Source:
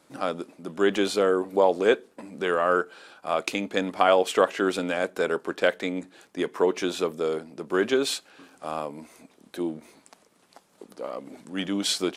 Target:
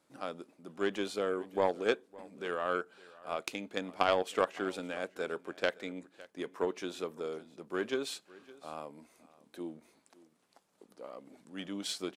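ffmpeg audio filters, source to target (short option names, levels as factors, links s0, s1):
-af "aeval=exprs='0.562*(cos(1*acos(clip(val(0)/0.562,-1,1)))-cos(1*PI/2))+0.1*(cos(3*acos(clip(val(0)/0.562,-1,1)))-cos(3*PI/2))+0.00316*(cos(7*acos(clip(val(0)/0.562,-1,1)))-cos(7*PI/2))':c=same,aecho=1:1:561:0.0891,volume=0.562"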